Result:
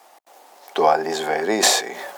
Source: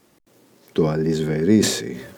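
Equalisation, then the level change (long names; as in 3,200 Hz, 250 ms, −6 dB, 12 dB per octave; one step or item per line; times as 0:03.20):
high-pass with resonance 760 Hz, resonance Q 5.4
+6.0 dB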